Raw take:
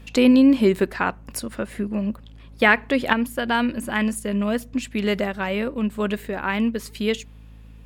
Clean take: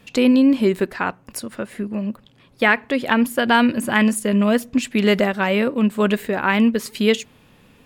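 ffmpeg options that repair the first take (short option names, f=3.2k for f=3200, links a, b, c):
-af "bandreject=f=54:t=h:w=4,bandreject=f=108:t=h:w=4,bandreject=f=162:t=h:w=4,bandreject=f=216:t=h:w=4,bandreject=f=270:t=h:w=4,asetnsamples=n=441:p=0,asendcmd='3.13 volume volume 6dB',volume=0dB"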